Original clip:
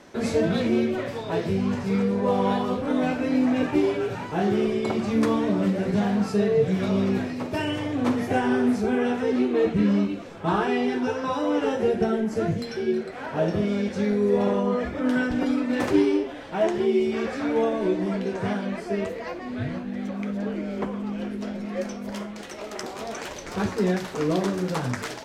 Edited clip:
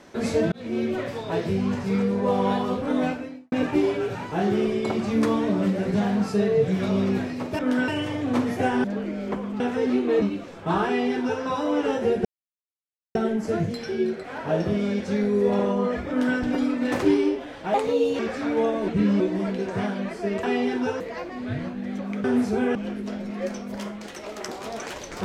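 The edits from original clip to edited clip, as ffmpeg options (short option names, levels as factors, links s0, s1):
-filter_complex "[0:a]asplit=17[s0][s1][s2][s3][s4][s5][s6][s7][s8][s9][s10][s11][s12][s13][s14][s15][s16];[s0]atrim=end=0.52,asetpts=PTS-STARTPTS,afade=t=out:st=0.516:d=0.004:c=hsin[s17];[s1]atrim=start=0.52:end=3.52,asetpts=PTS-STARTPTS,afade=t=in:d=0.41,afade=t=out:st=2.54:d=0.46:c=qua[s18];[s2]atrim=start=3.52:end=7.592,asetpts=PTS-STARTPTS,afade=t=in:d=0.004:c=hsin[s19];[s3]atrim=start=14.968:end=15.262[s20];[s4]atrim=start=7.588:end=8.552[s21];[s5]atrim=start=20.338:end=21.102[s22];[s6]atrim=start=9.058:end=9.682[s23];[s7]atrim=start=9.998:end=12.03,asetpts=PTS-STARTPTS,afade=t=out:st=2.028:d=0.004:c=hsin,apad=pad_dur=0.9[s24];[s8]atrim=start=12.03:end=16.624,asetpts=PTS-STARTPTS,afade=t=in:d=0.004:c=hsin[s25];[s9]atrim=start=16.62:end=17.18,asetpts=PTS-STARTPTS,asetrate=54684,aresample=44100,atrim=end_sample=19916,asetpts=PTS-STARTPTS[s26];[s10]atrim=start=17.176:end=17.872[s27];[s11]atrim=start=9.678:end=10.002[s28];[s12]atrim=start=17.868:end=19.102[s29];[s13]atrim=start=10.638:end=11.212[s30];[s14]atrim=start=19.098:end=20.342[s31];[s15]atrim=start=8.548:end=9.062[s32];[s16]atrim=start=21.098[s33];[s17][s18][s19]concat=n=3:v=0:a=1[s34];[s34][s20]acrossfade=d=0.004:c1=hsin:c2=hsin[s35];[s35][s21]acrossfade=d=0.004:c1=hsin:c2=hsin[s36];[s36][s22]acrossfade=d=0.004:c1=hsin:c2=hsin[s37];[s37][s23]acrossfade=d=0.004:c1=hsin:c2=hsin[s38];[s24][s25]concat=n=2:v=0:a=1[s39];[s38][s39]acrossfade=d=0.004:c1=hsin:c2=hsin[s40];[s40][s26]acrossfade=d=0.004:c1=hsin:c2=hsin[s41];[s41][s27]acrossfade=d=0.004:c1=hsin:c2=hsin[s42];[s42][s28]acrossfade=d=0.004:c1=hsin:c2=hsin[s43];[s43][s29]acrossfade=d=0.004:c1=hsin:c2=hsin[s44];[s44][s30]acrossfade=d=0.004:c1=hsin:c2=hsin[s45];[s45][s31]acrossfade=d=0.004:c1=hsin:c2=hsin[s46];[s46][s32]acrossfade=d=0.004:c1=hsin:c2=hsin[s47];[s47][s33]acrossfade=d=0.004:c1=hsin:c2=hsin"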